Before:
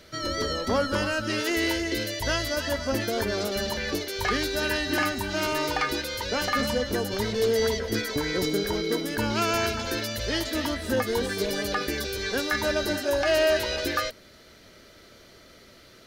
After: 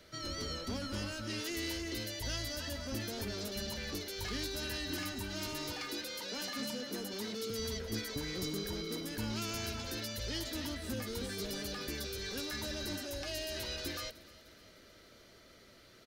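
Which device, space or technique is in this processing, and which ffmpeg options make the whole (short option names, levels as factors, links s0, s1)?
one-band saturation: -filter_complex "[0:a]asettb=1/sr,asplit=3[s0][s1][s2];[s0]atrim=end=5.724[s3];[s1]atrim=start=5.72:end=7.5,asetpts=PTS-STARTPTS,afade=t=in:d=0.004:c=qsin,afade=t=out:st=1.776:d=0.004:c=qsin,highpass=f=180:w=0.5412,highpass=f=180:w=1.3066[s4];[s2]atrim=start=7.496[s5];[s3][s4]acrossfade=d=0.004:c1=hsin:c2=qsin[s6];[s6][s5]acrossfade=d=0.004:c1=qsin:c2=hsin,acrossover=split=280|2900[s7][s8][s9];[s8]asoftclip=type=tanh:threshold=0.0133[s10];[s7][s10][s9]amix=inputs=3:normalize=0,aecho=1:1:304|608|912|1216|1520:0.1|0.058|0.0336|0.0195|0.0113,volume=0.422"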